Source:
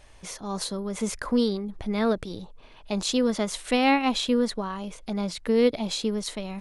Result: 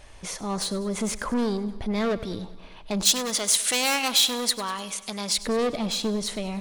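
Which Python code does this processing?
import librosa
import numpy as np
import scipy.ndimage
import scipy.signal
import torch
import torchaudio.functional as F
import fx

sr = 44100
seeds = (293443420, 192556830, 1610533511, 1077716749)

y = 10.0 ** (-26.0 / 20.0) * np.tanh(x / 10.0 ** (-26.0 / 20.0))
y = fx.tilt_eq(y, sr, slope=4.0, at=(3.05, 5.36), fade=0.02)
y = fx.echo_feedback(y, sr, ms=99, feedback_pct=59, wet_db=-16.5)
y = F.gain(torch.from_numpy(y), 4.5).numpy()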